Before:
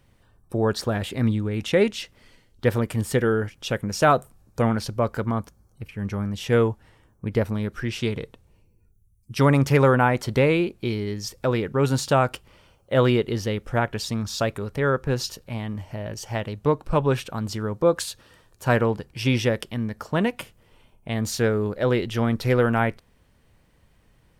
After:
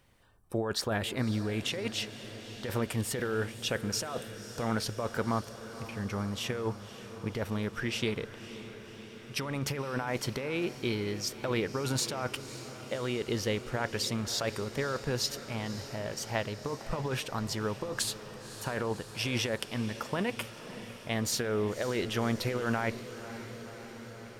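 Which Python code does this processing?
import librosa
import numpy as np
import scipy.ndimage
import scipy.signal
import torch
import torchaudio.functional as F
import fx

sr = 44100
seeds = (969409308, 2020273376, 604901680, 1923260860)

y = fx.low_shelf(x, sr, hz=340.0, db=-7.5)
y = fx.over_compress(y, sr, threshold_db=-27.0, ratio=-1.0)
y = fx.echo_diffused(y, sr, ms=548, feedback_pct=73, wet_db=-13.5)
y = F.gain(torch.from_numpy(y), -4.0).numpy()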